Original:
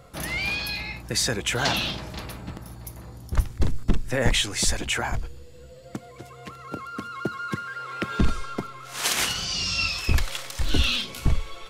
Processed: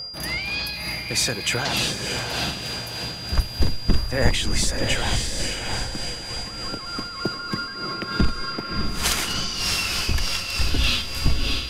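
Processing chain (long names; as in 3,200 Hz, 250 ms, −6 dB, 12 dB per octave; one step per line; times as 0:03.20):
feedback delay with all-pass diffusion 678 ms, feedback 47%, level −3.5 dB
steady tone 4,800 Hz −32 dBFS
amplitude tremolo 3.3 Hz, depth 44%
level +2 dB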